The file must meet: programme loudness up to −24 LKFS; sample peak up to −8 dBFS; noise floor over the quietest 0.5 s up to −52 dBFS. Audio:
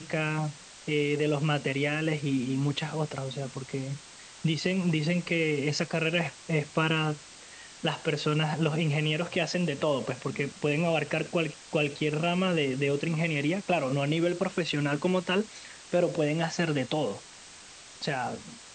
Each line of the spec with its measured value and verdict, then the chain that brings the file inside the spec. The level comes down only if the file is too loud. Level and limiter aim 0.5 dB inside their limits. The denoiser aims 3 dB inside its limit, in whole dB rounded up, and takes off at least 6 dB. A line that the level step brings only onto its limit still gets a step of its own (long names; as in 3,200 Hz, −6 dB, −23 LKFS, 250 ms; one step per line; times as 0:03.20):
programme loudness −29.0 LKFS: in spec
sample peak −12.5 dBFS: in spec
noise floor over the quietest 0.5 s −49 dBFS: out of spec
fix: broadband denoise 6 dB, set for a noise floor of −49 dBFS